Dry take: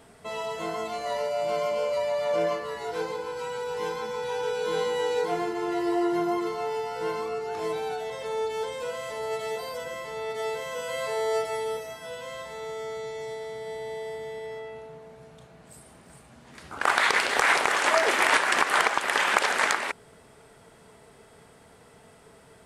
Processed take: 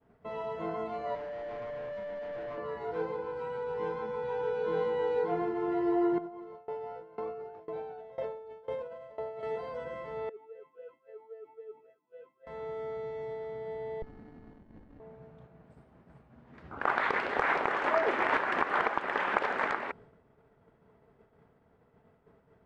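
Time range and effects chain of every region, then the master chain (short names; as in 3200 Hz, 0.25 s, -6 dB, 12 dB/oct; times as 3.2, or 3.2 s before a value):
1.15–2.58 HPF 360 Hz + overloaded stage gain 34 dB
6.18–9.43 bell 600 Hz +10 dB 0.48 oct + negative-ratio compressor -31 dBFS + dB-ramp tremolo decaying 2 Hz, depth 20 dB
10.29–12.47 compressor, threshold -34 dBFS + vowel sweep e-u 3.7 Hz
14.02–15 comb 5.3 ms, depth 85% + inverted band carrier 2600 Hz + running maximum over 65 samples
whole clip: Bessel low-pass 1100 Hz, order 2; bell 720 Hz -3 dB 1.9 oct; expander -49 dBFS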